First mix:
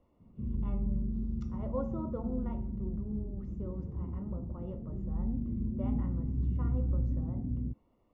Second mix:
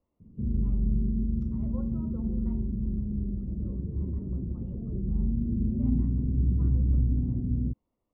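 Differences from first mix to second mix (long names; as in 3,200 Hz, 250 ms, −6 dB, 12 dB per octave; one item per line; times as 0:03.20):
speech −11.0 dB
background +6.5 dB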